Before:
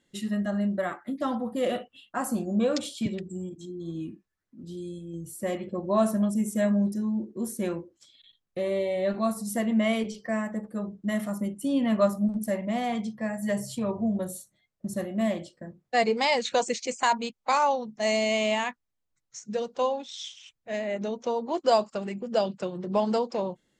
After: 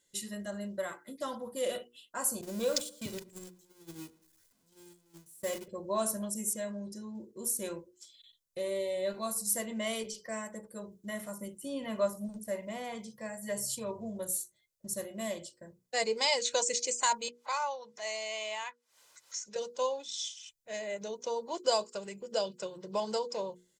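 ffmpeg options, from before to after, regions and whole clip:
-filter_complex "[0:a]asettb=1/sr,asplit=3[a][b][c];[a]atrim=end=2.414[d];[b]atrim=start=2.41:end=5.68,asetpts=PTS-STARTPTS,afade=t=in:d=0.004:c=qsin,afade=t=out:st=3.266:d=0.004:c=qsin,aeval=exprs='val(0)+0.5*0.0158*sgn(val(0))':c=same,agate=range=-25dB:threshold=-32dB:ratio=16:release=100:detection=peak,asplit=2[e][f];[f]adelay=114,lowpass=f=1.8k:p=1,volume=-20.5dB,asplit=2[g][h];[h]adelay=114,lowpass=f=1.8k:p=1,volume=0.44,asplit=2[i][j];[j]adelay=114,lowpass=f=1.8k:p=1,volume=0.44[k];[e][g][i][k]amix=inputs=4:normalize=0,atrim=end_sample=144207[l];[c]atrim=start=5.676[m];[d][l]acrossfade=d=0.004:c1=hsin:c2=qsin[n];[n][m]acrossfade=d=0.004:c1=qsin:c2=hsin,asettb=1/sr,asplit=3[o][p][q];[o]atrim=end=6.534[r];[p]atrim=start=6.53:end=7.15,asetpts=PTS-STARTPTS,afade=t=in:d=0.004:c=qsin,afade=t=out:st=0.616:d=0.004:c=qsin,lowpass=6.1k,acompressor=threshold=-27dB:ratio=2:attack=3.2:release=140:knee=1:detection=peak[s];[q]atrim=start=7.146[t];[r][s]acrossfade=d=0.004:c1=hsin:c2=qsin[u];[u][t]acrossfade=d=0.004:c1=qsin:c2=hsin,asettb=1/sr,asplit=3[v][w][x];[v]atrim=end=10.914[y];[w]atrim=start=10.91:end=13.56,asetpts=PTS-STARTPTS,afade=t=in:d=0.004:c=qsin,afade=t=out:st=2.646:d=0.004:c=qsin,acrossover=split=2800[z][aa];[aa]acompressor=threshold=-57dB:ratio=4:attack=1:release=60[ab];[z][ab]amix=inputs=2:normalize=0,highshelf=f=5.7k:g=5[ac];[x]atrim=start=13.556[ad];[y][ac]acrossfade=d=0.004:c1=hsin:c2=qsin[ae];[ae][ad]acrossfade=d=0.004:c1=qsin:c2=hsin,asettb=1/sr,asplit=3[af][ag][ah];[af]atrim=end=17.284[ai];[ag]atrim=start=17.28:end=19.56,asetpts=PTS-STARTPTS,afade=t=in:d=0.004:c=qsin,afade=t=out:st=2.276:d=0.004:c=qsin,highpass=910,aemphasis=mode=reproduction:type=riaa,acompressor=mode=upward:threshold=-31dB:ratio=2.5:attack=3.2:release=140:knee=2.83:detection=peak[aj];[ah]atrim=start=19.556[ak];[ai][aj]acrossfade=d=0.004:c1=hsin:c2=qsin[al];[al][ak]acrossfade=d=0.004:c1=qsin:c2=hsin,bass=f=250:g=-3,treble=f=4k:g=15,bandreject=f=60:t=h:w=6,bandreject=f=120:t=h:w=6,bandreject=f=180:t=h:w=6,bandreject=f=240:t=h:w=6,bandreject=f=300:t=h:w=6,bandreject=f=360:t=h:w=6,bandreject=f=420:t=h:w=6,bandreject=f=480:t=h:w=6,aecho=1:1:2:0.45,volume=-8dB"

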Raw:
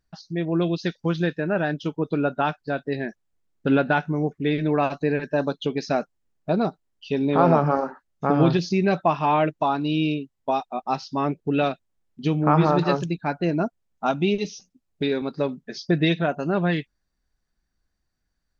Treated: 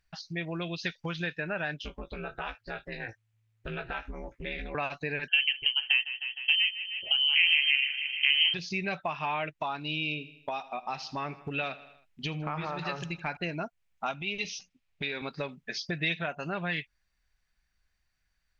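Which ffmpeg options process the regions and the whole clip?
-filter_complex "[0:a]asettb=1/sr,asplit=3[a][b][c];[a]atrim=end=1.794[d];[b]atrim=start=1.79:end=4.75,asetpts=PTS-STARTPTS,afade=t=in:d=0.004:c=qsin,afade=t=out:st=2.956:d=0.004:c=qsin,acompressor=threshold=-31dB:ratio=2.5:attack=3.2:release=140:knee=1:detection=peak,aeval=exprs='val(0)*sin(2*PI*110*n/s)':c=same,asplit=2[e][f];[f]adelay=18,volume=-6dB[g];[e][g]amix=inputs=2:normalize=0,atrim=end_sample=130536[h];[c]atrim=start=4.746[i];[d][h]acrossfade=d=0.004:c1=hsin:c2=qsin[j];[j][i]acrossfade=d=0.004:c1=qsin:c2=hsin,asettb=1/sr,asplit=3[k][l][m];[k]atrim=end=5.284[n];[l]atrim=start=5.28:end=8.54,asetpts=PTS-STARTPTS,afade=t=in:d=0.004:c=qsin,afade=t=out:st=3.256:d=0.004:c=qsin,aecho=1:1:154|308|462|616|770|924:0.141|0.0833|0.0492|0.029|0.0171|0.0101,atrim=end_sample=143766,lowpass=f=2.8k:t=q:w=0.5098,lowpass=f=2.8k:t=q:w=0.6013,lowpass=f=2.8k:t=q:w=0.9,lowpass=f=2.8k:t=q:w=2.563,afreqshift=-3300[o];[m]atrim=start=8.536[p];[n][o]acrossfade=d=0.004:c1=hsin:c2=qsin[q];[q][p]acrossfade=d=0.004:c1=qsin:c2=hsin,asettb=1/sr,asplit=3[r][s][t];[r]atrim=end=9.794[u];[s]atrim=start=9.79:end=13.37,asetpts=PTS-STARTPTS,afade=t=in:d=0.004:c=qsin,afade=t=out:st=3.576:d=0.004:c=qsin,acompressor=threshold=-23dB:ratio=2:attack=3.2:release=140:knee=1:detection=peak,aecho=1:1:79|158|237|316:0.106|0.0583|0.032|0.0176,atrim=end_sample=157878[v];[t]atrim=start=13.366[w];[u][v]acrossfade=d=0.004:c1=hsin:c2=qsin[x];[x][w]acrossfade=d=0.004:c1=qsin:c2=hsin,asettb=1/sr,asplit=3[y][z][aa];[y]atrim=end=14.144[ab];[z]atrim=start=14.14:end=15.23,asetpts=PTS-STARTPTS,afade=t=in:d=0.004:c=qsin,afade=t=out:st=1.086:d=0.004:c=qsin,lowpass=3.4k,aemphasis=mode=production:type=75kf,acompressor=threshold=-27dB:ratio=4:attack=3.2:release=140:knee=1:detection=peak[ac];[aa]atrim=start=15.226[ad];[ab][ac]acrossfade=d=0.004:c1=hsin:c2=qsin[ae];[ae][ad]acrossfade=d=0.004:c1=qsin:c2=hsin,equalizer=f=290:t=o:w=1.7:g=-10,acompressor=threshold=-34dB:ratio=3,equalizer=f=2.4k:t=o:w=1:g=10"

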